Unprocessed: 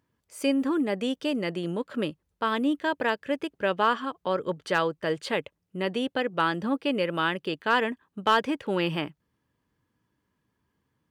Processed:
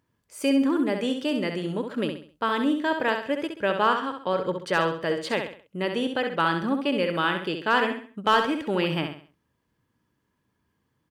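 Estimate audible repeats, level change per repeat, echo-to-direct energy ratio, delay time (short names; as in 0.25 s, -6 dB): 4, -9.0 dB, -6.0 dB, 66 ms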